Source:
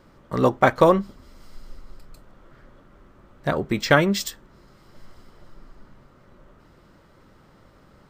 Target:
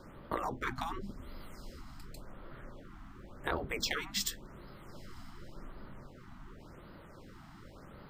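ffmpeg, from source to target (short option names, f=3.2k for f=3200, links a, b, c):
-filter_complex "[0:a]acrossover=split=320[a][b];[b]acompressor=threshold=-34dB:ratio=2.5[c];[a][c]amix=inputs=2:normalize=0,afftfilt=real='re*lt(hypot(re,im),0.141)':imag='im*lt(hypot(re,im),0.141)':win_size=1024:overlap=0.75,afftfilt=real='re*(1-between(b*sr/1024,430*pow(7300/430,0.5+0.5*sin(2*PI*0.9*pts/sr))/1.41,430*pow(7300/430,0.5+0.5*sin(2*PI*0.9*pts/sr))*1.41))':imag='im*(1-between(b*sr/1024,430*pow(7300/430,0.5+0.5*sin(2*PI*0.9*pts/sr))/1.41,430*pow(7300/430,0.5+0.5*sin(2*PI*0.9*pts/sr))*1.41))':win_size=1024:overlap=0.75,volume=1.5dB"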